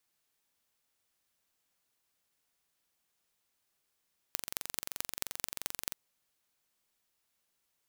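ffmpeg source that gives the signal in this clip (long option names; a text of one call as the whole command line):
ffmpeg -f lavfi -i "aevalsrc='0.596*eq(mod(n,1926),0)*(0.5+0.5*eq(mod(n,9630),0))':duration=1.6:sample_rate=44100" out.wav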